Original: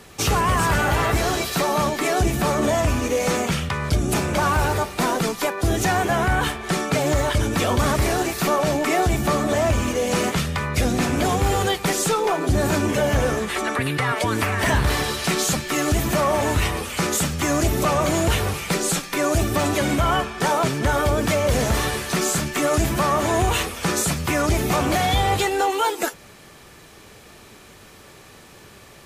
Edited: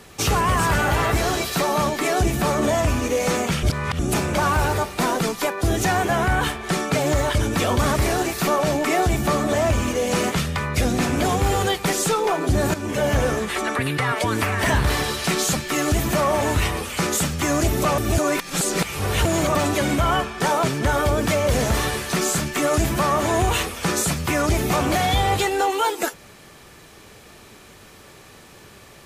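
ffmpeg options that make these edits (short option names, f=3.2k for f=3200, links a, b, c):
-filter_complex "[0:a]asplit=6[a][b][c][d][e][f];[a]atrim=end=3.632[g];[b]atrim=start=3.628:end=3.992,asetpts=PTS-STARTPTS,areverse[h];[c]atrim=start=3.988:end=12.74,asetpts=PTS-STARTPTS,afade=t=out:st=8.748:d=0.004:c=hsin:silence=0.237137[i];[d]atrim=start=12.74:end=17.982,asetpts=PTS-STARTPTS,afade=t=in:d=0.32:silence=0.237137[j];[e]atrim=start=17.978:end=19.552,asetpts=PTS-STARTPTS,areverse[k];[f]atrim=start=19.548[l];[g][h]acrossfade=d=0.004:c1=hsin:c2=hsin[m];[i][j]concat=n=2:v=0:a=1[n];[m][n]acrossfade=d=0.004:c1=hsin:c2=hsin[o];[o][k]acrossfade=d=0.004:c1=hsin:c2=hsin[p];[p][l]acrossfade=d=0.004:c1=hsin:c2=hsin"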